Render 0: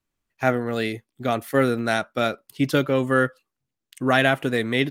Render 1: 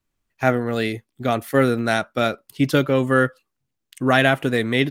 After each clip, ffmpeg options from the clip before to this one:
ffmpeg -i in.wav -af "lowshelf=frequency=120:gain=4,volume=2dB" out.wav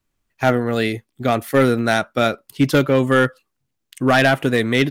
ffmpeg -i in.wav -af "asoftclip=type=hard:threshold=-10dB,volume=3dB" out.wav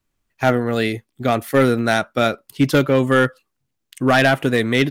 ffmpeg -i in.wav -af anull out.wav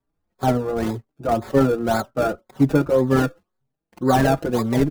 ffmpeg -i in.wav -filter_complex "[0:a]acrossover=split=1200[link_01][link_02];[link_01]crystalizer=i=7:c=0[link_03];[link_02]acrusher=samples=30:mix=1:aa=0.000001:lfo=1:lforange=30:lforate=1.9[link_04];[link_03][link_04]amix=inputs=2:normalize=0,asplit=2[link_05][link_06];[link_06]adelay=4.7,afreqshift=1.9[link_07];[link_05][link_07]amix=inputs=2:normalize=1" out.wav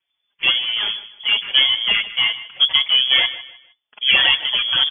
ffmpeg -i in.wav -af "crystalizer=i=8:c=0,lowpass=frequency=3000:width_type=q:width=0.5098,lowpass=frequency=3000:width_type=q:width=0.6013,lowpass=frequency=3000:width_type=q:width=0.9,lowpass=frequency=3000:width_type=q:width=2.563,afreqshift=-3500,aecho=1:1:154|308|462:0.168|0.0504|0.0151" out.wav

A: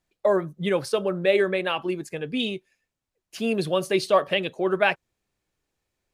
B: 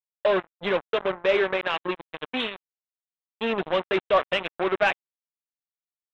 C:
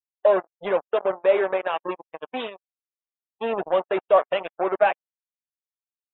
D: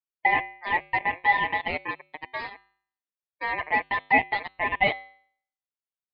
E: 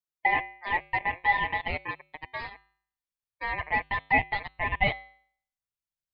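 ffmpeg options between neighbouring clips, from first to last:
ffmpeg -i in.wav -filter_complex "[0:a]aresample=8000,acrusher=bits=3:mix=0:aa=0.5,aresample=44100,asplit=2[link_01][link_02];[link_02]highpass=frequency=720:poles=1,volume=11dB,asoftclip=type=tanh:threshold=-6dB[link_03];[link_01][link_03]amix=inputs=2:normalize=0,lowpass=frequency=2300:poles=1,volume=-6dB,volume=-3dB" out.wav
ffmpeg -i in.wav -af "afftdn=noise_reduction=28:noise_floor=-34,equalizer=frequency=690:width=0.71:gain=13.5,volume=-8dB" out.wav
ffmpeg -i in.wav -af "lowpass=2200,bandreject=frequency=207.7:width_type=h:width=4,bandreject=frequency=415.4:width_type=h:width=4,bandreject=frequency=623.1:width_type=h:width=4,bandreject=frequency=830.8:width_type=h:width=4,bandreject=frequency=1038.5:width_type=h:width=4,bandreject=frequency=1246.2:width_type=h:width=4,bandreject=frequency=1453.9:width_type=h:width=4,bandreject=frequency=1661.6:width_type=h:width=4,bandreject=frequency=1869.3:width_type=h:width=4,bandreject=frequency=2077:width_type=h:width=4,bandreject=frequency=2284.7:width_type=h:width=4,bandreject=frequency=2492.4:width_type=h:width=4,bandreject=frequency=2700.1:width_type=h:width=4,bandreject=frequency=2907.8:width_type=h:width=4,bandreject=frequency=3115.5:width_type=h:width=4,aeval=exprs='val(0)*sin(2*PI*1400*n/s)':channel_layout=same" out.wav
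ffmpeg -i in.wav -af "asubboost=boost=6:cutoff=130,volume=-2.5dB" out.wav

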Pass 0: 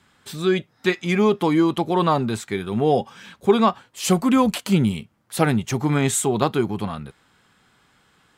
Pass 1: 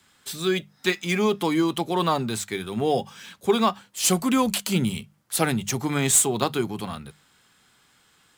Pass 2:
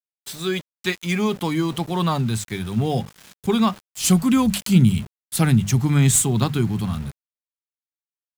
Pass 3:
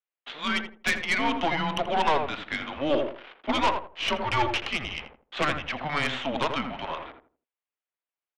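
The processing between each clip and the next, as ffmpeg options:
ffmpeg -i in.wav -filter_complex "[0:a]highshelf=frequency=3100:gain=11,bandreject=frequency=50:width_type=h:width=6,bandreject=frequency=100:width_type=h:width=6,bandreject=frequency=150:width_type=h:width=6,bandreject=frequency=200:width_type=h:width=6,acrossover=split=110|1300|2300[link_01][link_02][link_03][link_04];[link_04]acrusher=bits=3:mode=log:mix=0:aa=0.000001[link_05];[link_01][link_02][link_03][link_05]amix=inputs=4:normalize=0,volume=-4.5dB" out.wav
ffmpeg -i in.wav -af "asubboost=boost=8:cutoff=170,aeval=exprs='val(0)*gte(abs(val(0)),0.015)':channel_layout=same" out.wav
ffmpeg -i in.wav -filter_complex "[0:a]highpass=frequency=530:width_type=q:width=0.5412,highpass=frequency=530:width_type=q:width=1.307,lowpass=frequency=3300:width_type=q:width=0.5176,lowpass=frequency=3300:width_type=q:width=0.7071,lowpass=frequency=3300:width_type=q:width=1.932,afreqshift=-150,aeval=exprs='0.282*(cos(1*acos(clip(val(0)/0.282,-1,1)))-cos(1*PI/2))+0.126*(cos(5*acos(clip(val(0)/0.282,-1,1)))-cos(5*PI/2))+0.0562*(cos(8*acos(clip(val(0)/0.282,-1,1)))-cos(8*PI/2))':channel_layout=same,asplit=2[link_01][link_02];[link_02]adelay=82,lowpass=frequency=920:poles=1,volume=-4dB,asplit=2[link_03][link_04];[link_04]adelay=82,lowpass=frequency=920:poles=1,volume=0.3,asplit=2[link_05][link_06];[link_06]adelay=82,lowpass=frequency=920:poles=1,volume=0.3,asplit=2[link_07][link_08];[link_08]adelay=82,lowpass=frequency=920:poles=1,volume=0.3[link_09];[link_01][link_03][link_05][link_07][link_09]amix=inputs=5:normalize=0,volume=-5.5dB" out.wav

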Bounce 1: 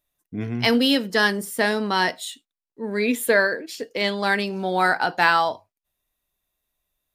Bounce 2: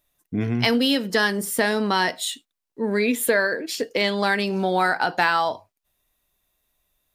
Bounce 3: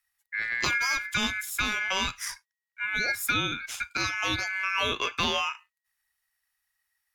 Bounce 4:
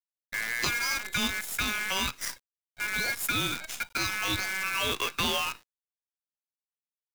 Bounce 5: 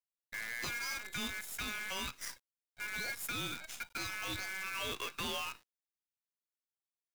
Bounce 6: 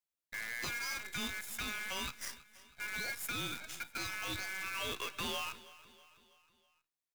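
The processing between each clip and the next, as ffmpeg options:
ffmpeg -i in.wav -af "acompressor=threshold=-27dB:ratio=2.5,volume=6.5dB" out.wav
ffmpeg -i in.wav -filter_complex "[0:a]aeval=exprs='val(0)*sin(2*PI*1900*n/s)':channel_layout=same,acrossover=split=120|760|7300[link_01][link_02][link_03][link_04];[link_02]aeval=exprs='sgn(val(0))*max(abs(val(0))-0.00178,0)':channel_layout=same[link_05];[link_01][link_05][link_03][link_04]amix=inputs=4:normalize=0,volume=-4dB" out.wav
ffmpeg -i in.wav -filter_complex "[0:a]acrossover=split=390|3000[link_01][link_02][link_03];[link_02]acompressor=threshold=-29dB:ratio=6[link_04];[link_01][link_04][link_03]amix=inputs=3:normalize=0,acrusher=bits=6:dc=4:mix=0:aa=0.000001" out.wav
ffmpeg -i in.wav -af "asoftclip=type=hard:threshold=-26.5dB,volume=-7.5dB" out.wav
ffmpeg -i in.wav -af "aecho=1:1:323|646|969|1292:0.119|0.0618|0.0321|0.0167" out.wav

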